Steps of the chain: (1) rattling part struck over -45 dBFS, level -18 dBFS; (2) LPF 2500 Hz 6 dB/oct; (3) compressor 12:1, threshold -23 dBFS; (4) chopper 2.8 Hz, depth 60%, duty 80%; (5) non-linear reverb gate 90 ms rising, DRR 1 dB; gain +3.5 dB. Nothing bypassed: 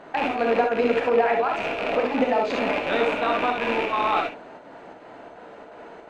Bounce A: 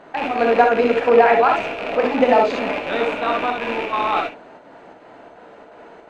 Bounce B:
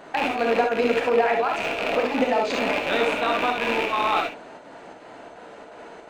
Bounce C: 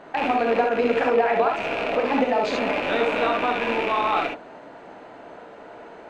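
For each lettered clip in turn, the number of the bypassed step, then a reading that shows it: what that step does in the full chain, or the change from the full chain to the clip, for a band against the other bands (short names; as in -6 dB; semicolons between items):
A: 3, mean gain reduction 2.0 dB; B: 2, 4 kHz band +4.0 dB; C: 4, momentary loudness spread change -1 LU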